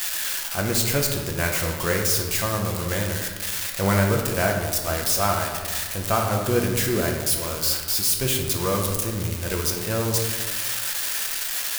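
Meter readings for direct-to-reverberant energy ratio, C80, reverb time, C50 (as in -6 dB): 0.5 dB, 6.0 dB, 1.5 s, 4.0 dB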